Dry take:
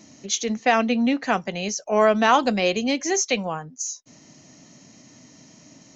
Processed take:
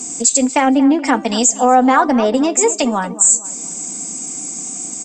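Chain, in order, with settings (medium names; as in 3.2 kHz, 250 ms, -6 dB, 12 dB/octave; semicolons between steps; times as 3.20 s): low-pass that closes with the level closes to 1.4 kHz, closed at -18 dBFS; resonant high shelf 4.4 kHz +14 dB, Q 1.5; comb 4.9 ms, depth 49%; dynamic bell 6.4 kHz, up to +5 dB, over -30 dBFS; in parallel at +1 dB: compression, threshold -29 dBFS, peak gain reduction 20 dB; on the sum: tape speed +18%; feedback comb 390 Hz, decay 0.59 s, mix 50%; tape echo 233 ms, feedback 45%, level -13.5 dB, low-pass 1.9 kHz; loudness maximiser +12 dB; trim -1 dB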